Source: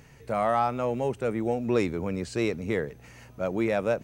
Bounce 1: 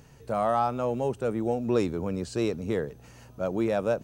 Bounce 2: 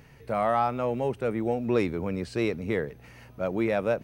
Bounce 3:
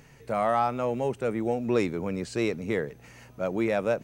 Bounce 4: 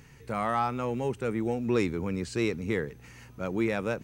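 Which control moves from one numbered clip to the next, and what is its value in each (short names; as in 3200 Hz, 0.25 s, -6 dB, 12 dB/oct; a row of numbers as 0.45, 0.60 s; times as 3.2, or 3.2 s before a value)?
bell, frequency: 2100, 7100, 75, 630 Hz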